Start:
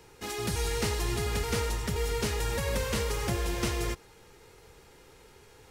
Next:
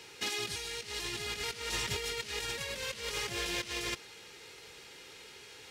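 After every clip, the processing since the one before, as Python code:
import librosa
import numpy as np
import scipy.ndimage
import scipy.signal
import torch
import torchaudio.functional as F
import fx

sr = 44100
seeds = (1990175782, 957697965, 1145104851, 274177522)

y = fx.weighting(x, sr, curve='D')
y = fx.over_compress(y, sr, threshold_db=-32.0, ratio=-0.5)
y = F.gain(torch.from_numpy(y), -4.5).numpy()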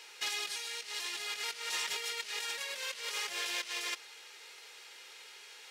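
y = scipy.signal.sosfilt(scipy.signal.butter(2, 710.0, 'highpass', fs=sr, output='sos'), x)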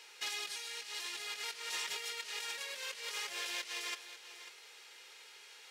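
y = x + 10.0 ** (-13.5 / 20.0) * np.pad(x, (int(545 * sr / 1000.0), 0))[:len(x)]
y = F.gain(torch.from_numpy(y), -3.5).numpy()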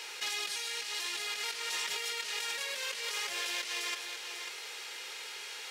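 y = fx.env_flatten(x, sr, amount_pct=50)
y = F.gain(torch.from_numpy(y), 3.0).numpy()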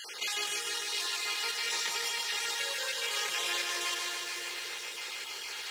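y = fx.spec_dropout(x, sr, seeds[0], share_pct=35)
y = fx.echo_crushed(y, sr, ms=149, feedback_pct=80, bits=10, wet_db=-5)
y = F.gain(torch.from_numpy(y), 3.0).numpy()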